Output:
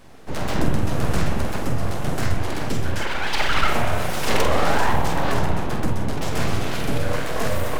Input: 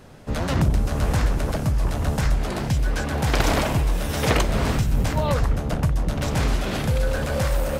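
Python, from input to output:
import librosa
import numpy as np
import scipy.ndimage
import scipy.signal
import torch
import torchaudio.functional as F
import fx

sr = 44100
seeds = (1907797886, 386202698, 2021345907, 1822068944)

y = fx.sine_speech(x, sr, at=(3.01, 3.68))
y = fx.spec_paint(y, sr, seeds[0], shape='rise', start_s=4.32, length_s=0.6, low_hz=440.0, high_hz=990.0, level_db=-21.0)
y = fx.rev_spring(y, sr, rt60_s=3.0, pass_ms=(30,), chirp_ms=70, drr_db=3.5)
y = np.abs(y)
y = fx.doubler(y, sr, ms=47.0, db=-7.0)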